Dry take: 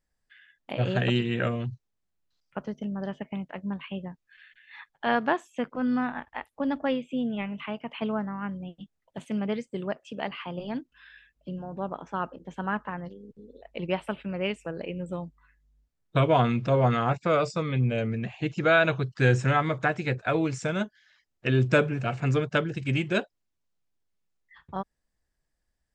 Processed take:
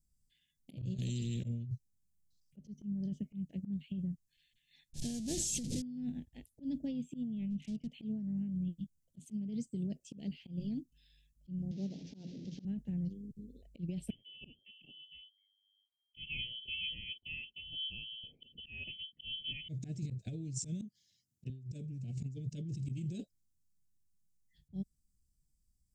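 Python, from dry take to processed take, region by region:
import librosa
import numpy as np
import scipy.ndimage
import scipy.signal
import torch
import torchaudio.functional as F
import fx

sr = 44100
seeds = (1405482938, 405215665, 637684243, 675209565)

y = fx.chain(x, sr, fx.high_shelf(hz=5200.0, db=-9.0),
    fx.level_steps(step_db=16),
    fx.spectral_comp(ratio=2.0), at=(0.97, 1.44))
y = fx.chain(y, sr, fx.delta_mod(bps=64000, step_db=-22.5),
    fx.lowpass(hz=5900.0, slope=12), at=(4.93, 5.82))
y = fx.chain(y, sr, fx.clip_hard(threshold_db=-33.5),
    fx.air_absorb(metres=82.0), at=(7.5, 7.92))
y = fx.chain(y, sr, fx.delta_mod(bps=32000, step_db=-34.0),
    fx.bandpass_edges(low_hz=190.0, high_hz=3100.0),
    fx.hum_notches(base_hz=60, count=9), at=(11.71, 12.65))
y = fx.chain(y, sr, fx.env_phaser(low_hz=430.0, high_hz=1800.0, full_db=-22.0),
    fx.fixed_phaser(hz=700.0, stages=4),
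    fx.freq_invert(carrier_hz=3200), at=(14.1, 19.69))
y = fx.chain(y, sr, fx.highpass(hz=99.0, slope=24),
    fx.low_shelf(hz=360.0, db=7.0), at=(20.81, 21.5))
y = scipy.signal.sosfilt(scipy.signal.cheby1(2, 1.0, [170.0, 7300.0], 'bandstop', fs=sr, output='sos'), y)
y = fx.auto_swell(y, sr, attack_ms=167.0)
y = fx.over_compress(y, sr, threshold_db=-39.0, ratio=-1.0)
y = y * librosa.db_to_amplitude(1.0)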